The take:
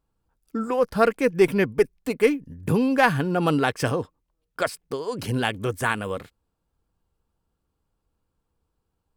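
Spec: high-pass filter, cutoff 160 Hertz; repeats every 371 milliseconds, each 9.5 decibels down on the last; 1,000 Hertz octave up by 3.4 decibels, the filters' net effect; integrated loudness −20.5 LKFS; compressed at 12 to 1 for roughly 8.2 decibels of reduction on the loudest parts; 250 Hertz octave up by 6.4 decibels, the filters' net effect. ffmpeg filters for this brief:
ffmpeg -i in.wav -af "highpass=160,equalizer=frequency=250:width_type=o:gain=8.5,equalizer=frequency=1000:width_type=o:gain=4,acompressor=threshold=-17dB:ratio=12,aecho=1:1:371|742|1113|1484:0.335|0.111|0.0365|0.012,volume=3.5dB" out.wav

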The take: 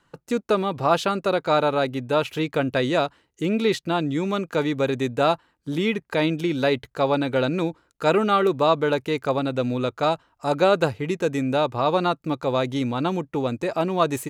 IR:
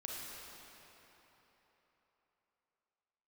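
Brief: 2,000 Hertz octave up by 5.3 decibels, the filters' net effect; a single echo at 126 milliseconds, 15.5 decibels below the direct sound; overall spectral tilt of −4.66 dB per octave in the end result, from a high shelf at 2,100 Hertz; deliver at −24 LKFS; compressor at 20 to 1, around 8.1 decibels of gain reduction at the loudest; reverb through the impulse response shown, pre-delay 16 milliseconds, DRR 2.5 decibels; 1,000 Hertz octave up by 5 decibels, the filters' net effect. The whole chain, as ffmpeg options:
-filter_complex "[0:a]equalizer=frequency=1000:width_type=o:gain=5.5,equalizer=frequency=2000:width_type=o:gain=8.5,highshelf=frequency=2100:gain=-5.5,acompressor=threshold=-18dB:ratio=20,aecho=1:1:126:0.168,asplit=2[link_01][link_02];[1:a]atrim=start_sample=2205,adelay=16[link_03];[link_02][link_03]afir=irnorm=-1:irlink=0,volume=-2.5dB[link_04];[link_01][link_04]amix=inputs=2:normalize=0,volume=-1dB"

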